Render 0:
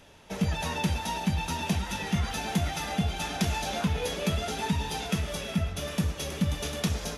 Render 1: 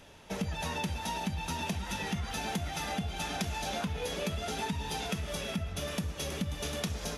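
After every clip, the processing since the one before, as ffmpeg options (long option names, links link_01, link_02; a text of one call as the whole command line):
ffmpeg -i in.wav -af "acompressor=threshold=-31dB:ratio=6" out.wav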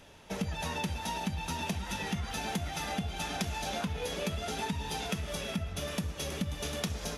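ffmpeg -i in.wav -af "aeval=exprs='0.112*(cos(1*acos(clip(val(0)/0.112,-1,1)))-cos(1*PI/2))+0.0112*(cos(3*acos(clip(val(0)/0.112,-1,1)))-cos(3*PI/2))':channel_layout=same,volume=2.5dB" out.wav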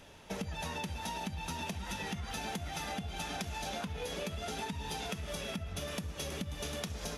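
ffmpeg -i in.wav -af "acompressor=threshold=-35dB:ratio=6" out.wav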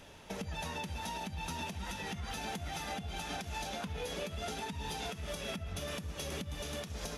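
ffmpeg -i in.wav -af "alimiter=level_in=5.5dB:limit=-24dB:level=0:latency=1:release=135,volume=-5.5dB,volume=1dB" out.wav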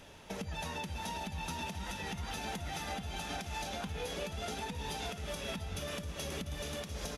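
ffmpeg -i in.wav -af "aecho=1:1:695:0.266" out.wav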